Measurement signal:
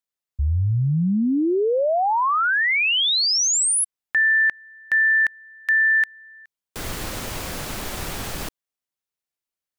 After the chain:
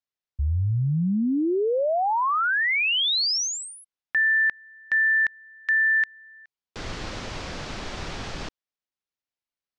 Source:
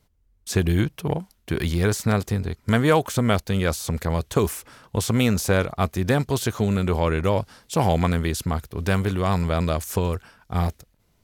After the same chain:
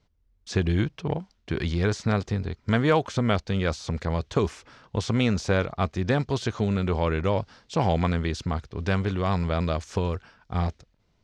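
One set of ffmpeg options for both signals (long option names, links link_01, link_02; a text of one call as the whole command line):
ffmpeg -i in.wav -af "lowpass=frequency=5900:width=0.5412,lowpass=frequency=5900:width=1.3066,volume=-3dB" out.wav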